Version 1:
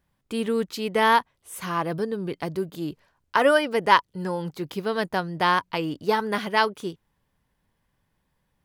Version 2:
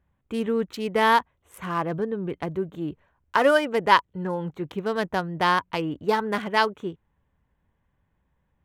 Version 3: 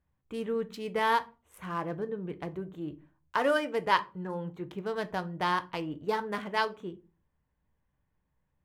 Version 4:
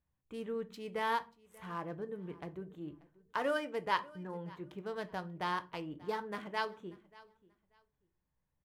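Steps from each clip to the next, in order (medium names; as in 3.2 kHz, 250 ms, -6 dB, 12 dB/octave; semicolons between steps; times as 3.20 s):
local Wiener filter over 9 samples; peaking EQ 68 Hz +8 dB 0.77 oct
simulated room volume 140 m³, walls furnished, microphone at 0.48 m; trim -8 dB
feedback delay 586 ms, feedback 21%, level -22 dB; trim -7 dB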